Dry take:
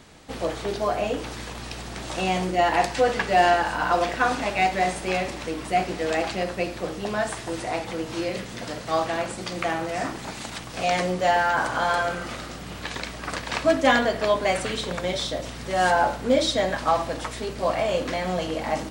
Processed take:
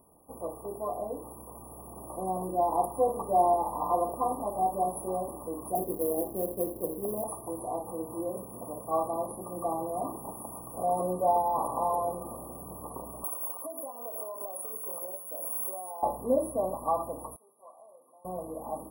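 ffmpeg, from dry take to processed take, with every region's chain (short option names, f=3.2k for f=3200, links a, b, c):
-filter_complex "[0:a]asettb=1/sr,asplit=3[a][b][c];[a]atrim=end=5.754[d];[b]atrim=start=5.75:end=7.24,asetpts=PTS-STARTPTS,afade=t=in:d=0.004:c=qsin,afade=t=out:st=1.486:d=0.004:c=qsin,lowpass=f=430:t=q:w=1.7,acrusher=bits=3:mode=log:mix=0:aa=0.000001[e];[c]atrim=start=7.236[f];[d][e]acrossfade=d=0.004:c1=hsin:c2=qsin[g];[g][f]acrossfade=d=0.004:c1=qsin:c2=hsin,asettb=1/sr,asplit=3[h][i][j];[h]atrim=end=13.244[k];[i]atrim=start=13.24:end=16.03,asetpts=PTS-STARTPTS,afade=t=in:d=0.004:c=qsin,afade=t=out:st=2.786:d=0.004:c=qsin,highpass=390,aemphasis=mode=production:type=50fm,acompressor=threshold=-31dB:ratio=20:attack=3.2:release=140:knee=1:detection=peak[l];[j]atrim=start=16.026[m];[k][l]acrossfade=d=0.004:c1=hsin:c2=qsin[n];[n][m]acrossfade=d=0.004:c1=qsin:c2=hsin,asettb=1/sr,asplit=3[o][p][q];[o]atrim=end=17.364[r];[p]atrim=start=17.36:end=18.25,asetpts=PTS-STARTPTS,afade=t=in:d=0.004:c=qsin,afade=t=out:st=0.886:d=0.004:c=qsin,lowpass=4.8k,aderivative,bandreject=f=60:t=h:w=6,bandreject=f=120:t=h:w=6,bandreject=f=180:t=h:w=6,bandreject=f=240:t=h:w=6,bandreject=f=300:t=h:w=6,bandreject=f=360:t=h:w=6,bandreject=f=420:t=h:w=6[s];[q]atrim=start=18.246[t];[r][s]acrossfade=d=0.004:c1=hsin:c2=qsin[u];[u][t]acrossfade=d=0.004:c1=qsin:c2=hsin,afftfilt=real='re*(1-between(b*sr/4096,1200,9700))':imag='im*(1-between(b*sr/4096,1200,9700))':win_size=4096:overlap=0.75,bass=f=250:g=-6,treble=f=4k:g=14,dynaudnorm=f=360:g=13:m=5.5dB,volume=-9dB"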